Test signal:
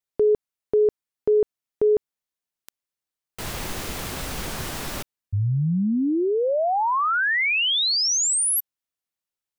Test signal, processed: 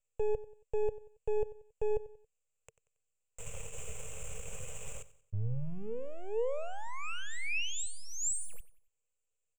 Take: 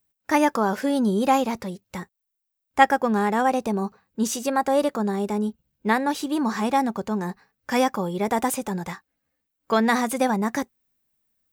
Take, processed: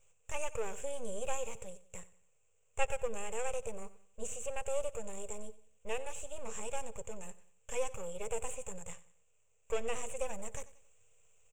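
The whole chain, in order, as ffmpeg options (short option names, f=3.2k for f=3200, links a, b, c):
-filter_complex "[0:a]aemphasis=mode=production:type=75fm,acrossover=split=2500[a][b];[b]acompressor=threshold=-26dB:ratio=4:attack=1:release=60[c];[a][c]amix=inputs=2:normalize=0,aeval=exprs='max(val(0),0)':c=same,firequalizer=gain_entry='entry(120,0);entry(310,-30);entry(450,4);entry(730,-11);entry(1200,-12);entry(1800,-16);entry(2600,-1);entry(4400,-28);entry(7400,5);entry(11000,-24)':delay=0.05:min_phase=1,asplit=2[d][e];[e]aecho=0:1:92|184|276:0.133|0.052|0.0203[f];[d][f]amix=inputs=2:normalize=0,volume=-5.5dB"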